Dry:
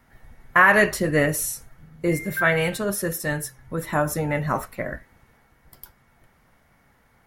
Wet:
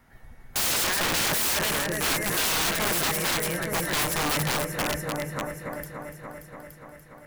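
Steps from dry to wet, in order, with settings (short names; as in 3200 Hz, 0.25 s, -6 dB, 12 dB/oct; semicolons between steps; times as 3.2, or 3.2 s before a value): multi-head echo 0.29 s, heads all three, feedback 52%, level -12 dB; wrapped overs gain 20 dB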